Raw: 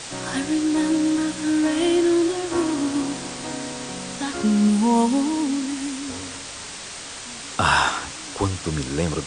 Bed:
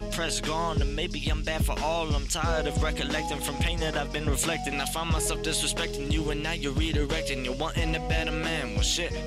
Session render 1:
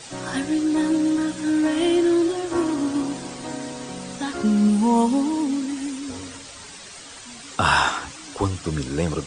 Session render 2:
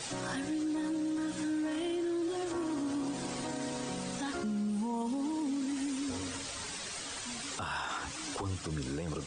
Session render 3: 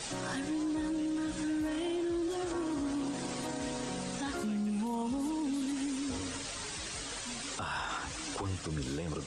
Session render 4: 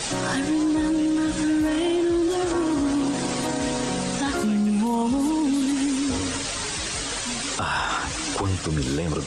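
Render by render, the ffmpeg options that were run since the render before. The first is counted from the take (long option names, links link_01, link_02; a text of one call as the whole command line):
ffmpeg -i in.wav -af "afftdn=noise_reduction=9:noise_floor=-36" out.wav
ffmpeg -i in.wav -af "acompressor=threshold=-35dB:ratio=2,alimiter=level_in=4dB:limit=-24dB:level=0:latency=1:release=26,volume=-4dB" out.wav
ffmpeg -i in.wav -i bed.wav -filter_complex "[1:a]volume=-23.5dB[link_01];[0:a][link_01]amix=inputs=2:normalize=0" out.wav
ffmpeg -i in.wav -af "volume=11.5dB" out.wav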